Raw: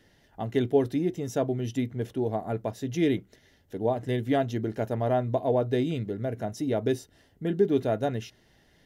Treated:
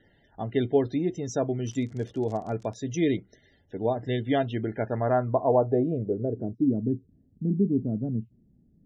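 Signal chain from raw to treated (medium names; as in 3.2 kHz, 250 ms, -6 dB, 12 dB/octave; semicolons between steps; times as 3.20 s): treble shelf 4.6 kHz -2.5 dB; loudest bins only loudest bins 64; 1.65–2.75 s: crackle 97 per s -> 42 per s -40 dBFS; low-pass sweep 6.6 kHz -> 220 Hz, 3.80–6.86 s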